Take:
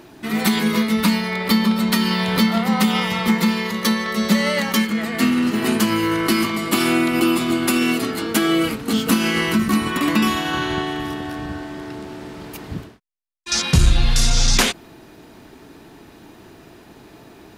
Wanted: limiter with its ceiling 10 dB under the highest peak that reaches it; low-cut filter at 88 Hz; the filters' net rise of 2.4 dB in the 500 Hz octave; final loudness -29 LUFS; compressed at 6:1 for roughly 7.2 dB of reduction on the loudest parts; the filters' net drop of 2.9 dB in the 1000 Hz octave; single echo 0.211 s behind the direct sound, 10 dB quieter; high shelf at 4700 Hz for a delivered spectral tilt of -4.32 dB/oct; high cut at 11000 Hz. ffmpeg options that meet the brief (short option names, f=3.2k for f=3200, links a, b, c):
-af "highpass=88,lowpass=11k,equalizer=f=500:t=o:g=4.5,equalizer=f=1k:t=o:g=-5.5,highshelf=f=4.7k:g=9,acompressor=threshold=-19dB:ratio=6,alimiter=limit=-15.5dB:level=0:latency=1,aecho=1:1:211:0.316,volume=-4.5dB"